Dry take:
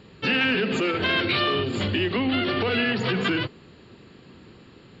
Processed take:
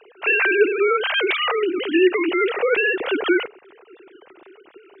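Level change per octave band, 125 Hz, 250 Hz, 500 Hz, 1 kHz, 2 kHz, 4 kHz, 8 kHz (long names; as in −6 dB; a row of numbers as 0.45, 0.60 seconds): below −30 dB, +1.5 dB, +8.0 dB, +3.0 dB, +5.0 dB, −1.0 dB, can't be measured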